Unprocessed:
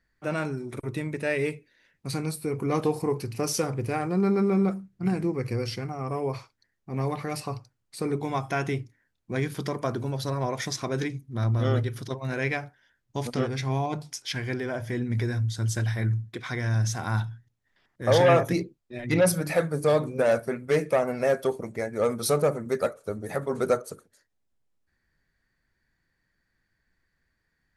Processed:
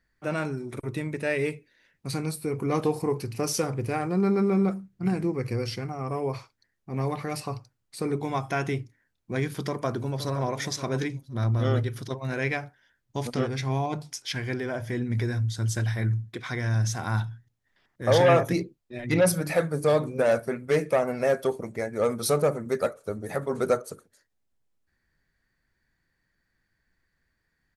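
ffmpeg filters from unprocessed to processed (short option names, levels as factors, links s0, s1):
-filter_complex "[0:a]asplit=2[s0][s1];[s1]afade=t=in:st=9.66:d=0.01,afade=t=out:st=10.45:d=0.01,aecho=0:1:520|1040:0.251189|0.0376783[s2];[s0][s2]amix=inputs=2:normalize=0"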